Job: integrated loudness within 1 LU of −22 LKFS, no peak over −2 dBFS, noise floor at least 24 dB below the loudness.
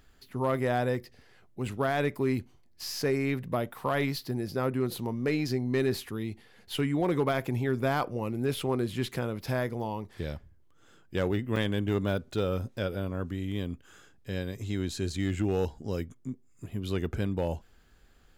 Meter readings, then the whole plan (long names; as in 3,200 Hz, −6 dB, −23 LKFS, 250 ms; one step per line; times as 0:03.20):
share of clipped samples 0.3%; peaks flattened at −19.5 dBFS; number of dropouts 1; longest dropout 2.9 ms; integrated loudness −31.5 LKFS; sample peak −19.5 dBFS; target loudness −22.0 LKFS
→ clipped peaks rebuilt −19.5 dBFS
repair the gap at 0:11.56, 2.9 ms
level +9.5 dB